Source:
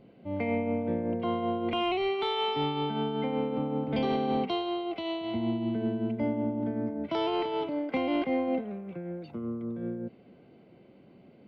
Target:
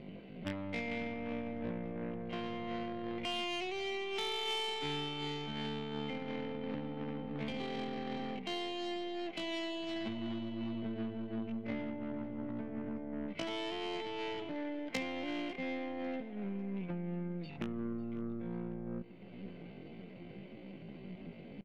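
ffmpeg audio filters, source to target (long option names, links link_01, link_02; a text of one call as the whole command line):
ffmpeg -i in.wav -filter_complex "[0:a]adynamicsmooth=sensitivity=4.5:basefreq=4500,equalizer=frequency=180:width=4:gain=7.5,acompressor=threshold=-41dB:ratio=20,aeval=exprs='0.0237*(cos(1*acos(clip(val(0)/0.0237,-1,1)))-cos(1*PI/2))+0.00668*(cos(4*acos(clip(val(0)/0.0237,-1,1)))-cos(4*PI/2))+0.00596*(cos(6*acos(clip(val(0)/0.0237,-1,1)))-cos(6*PI/2))+0.000299*(cos(8*acos(clip(val(0)/0.0237,-1,1)))-cos(8*PI/2))':channel_layout=same,highshelf=frequency=1700:width_type=q:width=1.5:gain=6.5,atempo=0.53,asplit=2[link_01][link_02];[link_02]adelay=548,lowpass=frequency=3600:poles=1,volume=-18dB,asplit=2[link_03][link_04];[link_04]adelay=548,lowpass=frequency=3600:poles=1,volume=0.55,asplit=2[link_05][link_06];[link_06]adelay=548,lowpass=frequency=3600:poles=1,volume=0.55,asplit=2[link_07][link_08];[link_08]adelay=548,lowpass=frequency=3600:poles=1,volume=0.55,asplit=2[link_09][link_10];[link_10]adelay=548,lowpass=frequency=3600:poles=1,volume=0.55[link_11];[link_01][link_03][link_05][link_07][link_09][link_11]amix=inputs=6:normalize=0,volume=4.5dB" out.wav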